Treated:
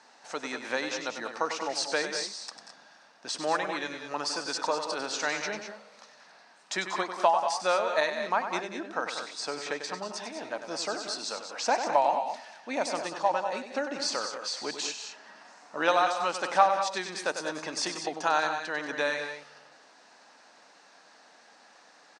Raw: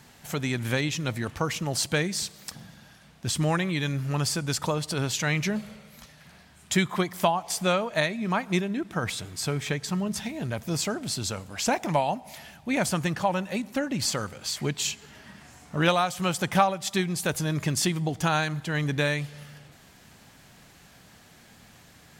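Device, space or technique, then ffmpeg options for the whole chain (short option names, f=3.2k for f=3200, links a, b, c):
phone speaker on a table: -filter_complex "[0:a]lowpass=f=8k:w=0.5412,lowpass=f=8k:w=1.3066,asettb=1/sr,asplit=3[a][b][c];[a]atrim=end=12.744[d];[b]atrim=start=12.74:end=13.29,asetpts=PTS-STARTPTS,afade=t=in:d=0.004:c=qsin,afade=t=out:st=0.546:d=0.004:c=qsin,equalizer=f=1.6k:w=1.2:g=-5.5[e];[c]atrim=start=13.286[f];[d][e]acrossfade=d=0.004:c1=hsin:c2=qsin[g];[g][f]acrossfade=d=0.004:c1=qsin:c2=hsin,highpass=f=340:w=0.5412,highpass=f=340:w=1.3066,equalizer=f=380:t=q:w=4:g=-8,equalizer=f=900:t=q:w=4:g=3,equalizer=f=2.2k:t=q:w=4:g=-6,equalizer=f=3.2k:t=q:w=4:g=-9,equalizer=f=7.3k:t=q:w=4:g=-9,lowpass=f=8.6k:w=0.5412,lowpass=f=8.6k:w=1.3066,aecho=1:1:97|186|211:0.355|0.282|0.299"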